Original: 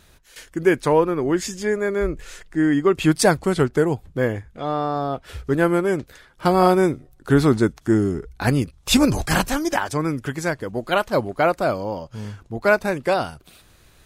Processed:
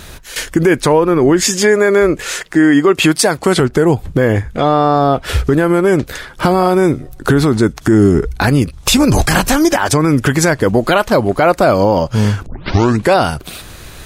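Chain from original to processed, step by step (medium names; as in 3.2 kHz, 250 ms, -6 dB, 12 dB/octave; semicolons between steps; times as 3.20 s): 1.44–3.60 s: high-pass 320 Hz 6 dB/octave; 12.46 s: tape start 0.64 s; compression 6:1, threshold -24 dBFS, peak gain reduction 13.5 dB; loudness maximiser +20.5 dB; trim -1 dB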